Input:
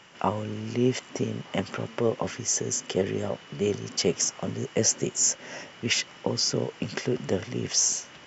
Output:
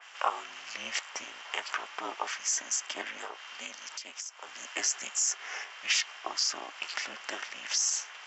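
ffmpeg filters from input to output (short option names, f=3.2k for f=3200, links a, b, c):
-filter_complex "[0:a]highpass=f=900:w=0.5412,highpass=f=900:w=1.3066,alimiter=limit=-20dB:level=0:latency=1:release=51,asettb=1/sr,asplit=3[a][b][c];[a]atrim=end=3.244[d];[b]atrim=start=3.24:end=4.65,asetpts=PTS-STARTPTS,afade=t=in:d=0.004:c=qsin,afade=t=out:st=1.406:d=0.004:c=qsin,acompressor=threshold=-41dB:ratio=16[e];[c]atrim=start=4.646[f];[d][e]acrossfade=d=0.004:c1=hsin:c2=qsin[g];[g][f]acrossfade=d=0.004:c1=qsin:c2=hsin,aeval=exprs='val(0)*sin(2*PI*160*n/s)':c=same,adynamicequalizer=threshold=0.00316:dfrequency=2800:dqfactor=0.7:tfrequency=2800:tqfactor=0.7:attack=5:release=100:ratio=0.375:range=2.5:mode=cutabove:tftype=highshelf,volume=7dB"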